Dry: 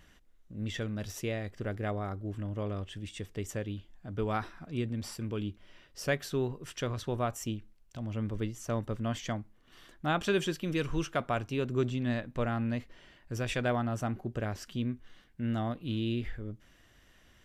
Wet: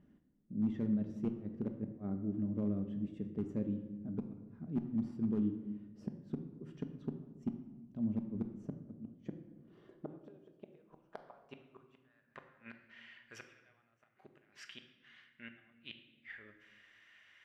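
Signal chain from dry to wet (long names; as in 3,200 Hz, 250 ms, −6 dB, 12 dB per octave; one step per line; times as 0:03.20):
gate with flip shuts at −24 dBFS, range −34 dB
band-pass filter sweep 230 Hz → 2,100 Hz, 0:08.93–0:12.83
gain into a clipping stage and back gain 33 dB
on a send: convolution reverb RT60 1.2 s, pre-delay 5 ms, DRR 6 dB
on the sum: level +5 dB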